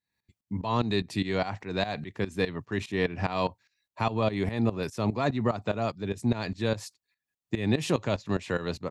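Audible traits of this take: tremolo saw up 4.9 Hz, depth 85%

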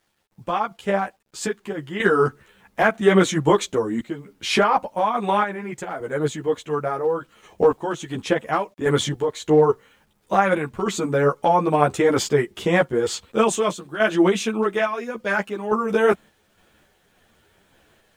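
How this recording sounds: random-step tremolo, depth 80%; a quantiser's noise floor 12-bit, dither none; a shimmering, thickened sound

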